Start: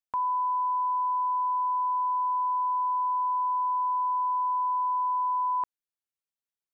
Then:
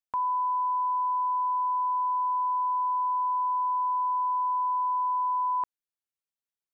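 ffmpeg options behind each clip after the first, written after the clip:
-af anull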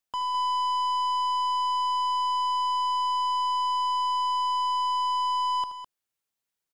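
-filter_complex "[0:a]acontrast=71,aeval=exprs='(tanh(25.1*val(0)+0.1)-tanh(0.1))/25.1':c=same,asplit=2[s0][s1];[s1]aecho=0:1:75.8|207:0.282|0.316[s2];[s0][s2]amix=inputs=2:normalize=0"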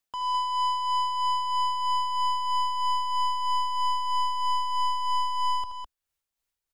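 -filter_complex "[0:a]asubboost=boost=8:cutoff=63,asplit=2[s0][s1];[s1]volume=17.8,asoftclip=hard,volume=0.0562,volume=0.596[s2];[s0][s2]amix=inputs=2:normalize=0,tremolo=f=3.1:d=0.45,volume=0.794"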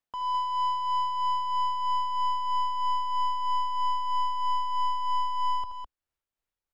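-af "highshelf=f=3200:g=-12"

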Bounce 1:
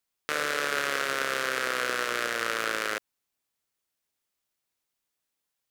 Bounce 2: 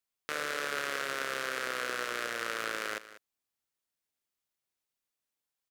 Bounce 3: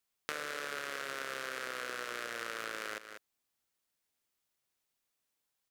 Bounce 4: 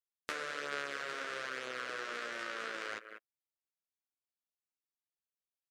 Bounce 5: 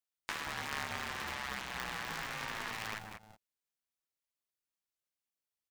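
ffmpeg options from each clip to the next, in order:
-af "aecho=1:1:194:0.168,volume=0.501"
-af "acompressor=threshold=0.0112:ratio=6,volume=1.58"
-af "afftdn=nr=19:nf=-54,flanger=delay=8.1:depth=6:regen=-5:speed=0.6:shape=sinusoidal,volume=1.41"
-filter_complex "[0:a]acrossover=split=660[s0][s1];[s0]adelay=180[s2];[s2][s1]amix=inputs=2:normalize=0,aeval=exprs='val(0)*sgn(sin(2*PI*330*n/s))':c=same,volume=1.12"

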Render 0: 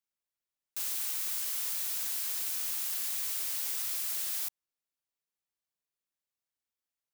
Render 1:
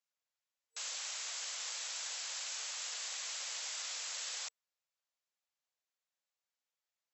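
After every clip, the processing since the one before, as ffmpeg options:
-af "afftfilt=real='re*between(b*sr/4096,460,7800)':imag='im*between(b*sr/4096,460,7800)':win_size=4096:overlap=0.75,volume=1.12"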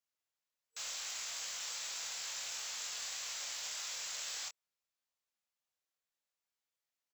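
-filter_complex "[0:a]acrusher=bits=3:mode=log:mix=0:aa=0.000001,asplit=2[s0][s1];[s1]adelay=24,volume=0.631[s2];[s0][s2]amix=inputs=2:normalize=0,volume=0.794"

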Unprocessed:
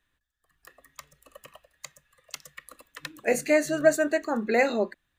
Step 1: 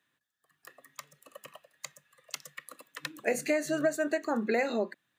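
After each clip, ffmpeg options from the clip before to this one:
-af "highpass=f=130:w=0.5412,highpass=f=130:w=1.3066,acompressor=threshold=0.0562:ratio=5"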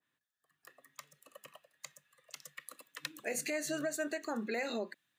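-af "alimiter=limit=0.0841:level=0:latency=1:release=80,adynamicequalizer=threshold=0.00355:dfrequency=1900:dqfactor=0.7:tfrequency=1900:tqfactor=0.7:attack=5:release=100:ratio=0.375:range=3.5:mode=boostabove:tftype=highshelf,volume=0.501"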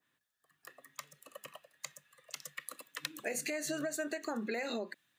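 -af "acompressor=threshold=0.0126:ratio=6,volume=1.68"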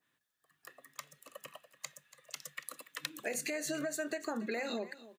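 -af "aecho=1:1:285:0.141"

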